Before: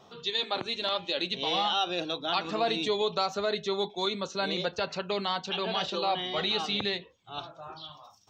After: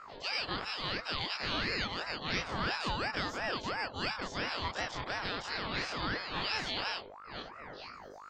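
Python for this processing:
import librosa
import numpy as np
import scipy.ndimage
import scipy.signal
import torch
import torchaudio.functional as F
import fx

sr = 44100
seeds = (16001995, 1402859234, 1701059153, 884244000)

y = fx.spec_dilate(x, sr, span_ms=60)
y = fx.dmg_buzz(y, sr, base_hz=50.0, harmonics=34, level_db=-41.0, tilt_db=-7, odd_only=False)
y = fx.ring_lfo(y, sr, carrier_hz=880.0, swing_pct=50, hz=2.9)
y = y * librosa.db_to_amplitude(-6.5)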